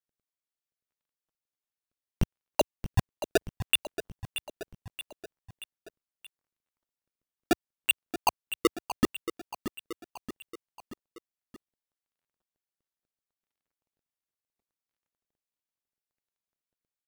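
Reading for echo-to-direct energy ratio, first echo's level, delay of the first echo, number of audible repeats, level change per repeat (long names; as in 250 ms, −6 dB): −9.5 dB, −11.0 dB, 628 ms, 4, −5.0 dB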